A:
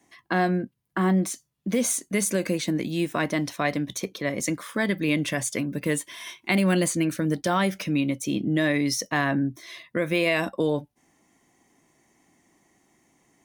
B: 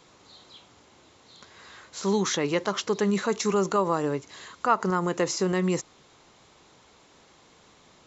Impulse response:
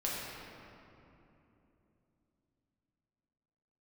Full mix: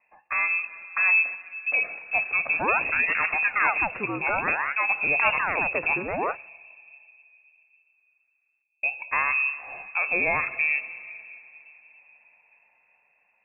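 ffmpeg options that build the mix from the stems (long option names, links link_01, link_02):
-filter_complex "[0:a]equalizer=frequency=620:width_type=o:width=2.3:gain=-3.5,volume=-2.5dB,asplit=3[link_01][link_02][link_03];[link_01]atrim=end=6.45,asetpts=PTS-STARTPTS,afade=type=out:start_time=6.446:duration=0.004:curve=hsin[link_04];[link_02]atrim=start=6.45:end=8.83,asetpts=PTS-STARTPTS,volume=0[link_05];[link_03]atrim=start=8.83,asetpts=PTS-STARTPTS,afade=type=in:duration=0.004:curve=hsin[link_06];[link_04][link_05][link_06]concat=n=3:v=0:a=1,asplit=3[link_07][link_08][link_09];[link_08]volume=-16.5dB[link_10];[1:a]aeval=exprs='val(0)*sin(2*PI*1600*n/s+1600*0.8/0.56*sin(2*PI*0.56*n/s))':channel_layout=same,adelay=550,volume=-1dB[link_11];[link_09]apad=whole_len=380081[link_12];[link_11][link_12]sidechaingate=range=-33dB:threshold=-58dB:ratio=16:detection=peak[link_13];[2:a]atrim=start_sample=2205[link_14];[link_10][link_14]afir=irnorm=-1:irlink=0[link_15];[link_07][link_13][link_15]amix=inputs=3:normalize=0,dynaudnorm=framelen=270:gausssize=5:maxgain=3dB,lowpass=frequency=2400:width_type=q:width=0.5098,lowpass=frequency=2400:width_type=q:width=0.6013,lowpass=frequency=2400:width_type=q:width=0.9,lowpass=frequency=2400:width_type=q:width=2.563,afreqshift=-2800"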